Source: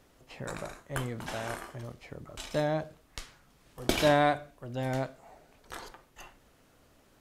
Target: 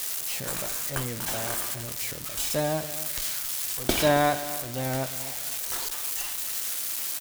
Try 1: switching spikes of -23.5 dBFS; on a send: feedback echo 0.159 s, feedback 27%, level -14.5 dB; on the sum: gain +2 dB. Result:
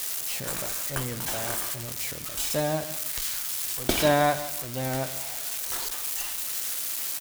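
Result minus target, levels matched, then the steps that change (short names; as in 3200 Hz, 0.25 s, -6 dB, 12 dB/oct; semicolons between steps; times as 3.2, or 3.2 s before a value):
echo 0.109 s early
change: feedback echo 0.268 s, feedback 27%, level -14.5 dB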